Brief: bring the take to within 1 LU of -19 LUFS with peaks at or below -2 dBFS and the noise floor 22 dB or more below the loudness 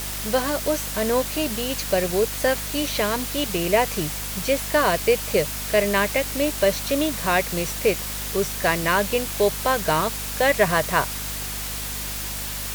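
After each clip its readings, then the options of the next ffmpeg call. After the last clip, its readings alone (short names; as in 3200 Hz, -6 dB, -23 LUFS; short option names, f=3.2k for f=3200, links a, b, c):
hum 50 Hz; harmonics up to 250 Hz; hum level -33 dBFS; noise floor -30 dBFS; noise floor target -45 dBFS; loudness -22.5 LUFS; peak -4.0 dBFS; loudness target -19.0 LUFS
-> -af "bandreject=f=50:t=h:w=6,bandreject=f=100:t=h:w=6,bandreject=f=150:t=h:w=6,bandreject=f=200:t=h:w=6,bandreject=f=250:t=h:w=6"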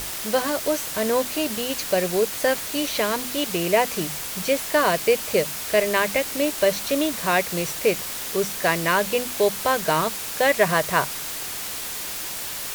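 hum none; noise floor -31 dBFS; noise floor target -45 dBFS
-> -af "afftdn=nr=14:nf=-31"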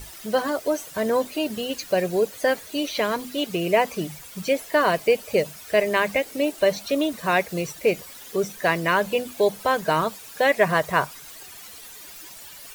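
noise floor -43 dBFS; noise floor target -46 dBFS
-> -af "afftdn=nr=6:nf=-43"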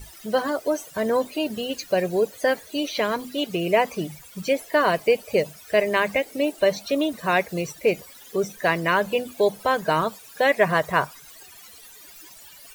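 noise floor -47 dBFS; loudness -23.5 LUFS; peak -5.0 dBFS; loudness target -19.0 LUFS
-> -af "volume=4.5dB,alimiter=limit=-2dB:level=0:latency=1"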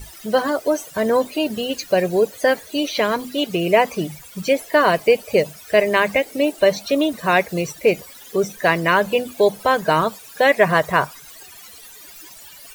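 loudness -19.5 LUFS; peak -2.0 dBFS; noise floor -42 dBFS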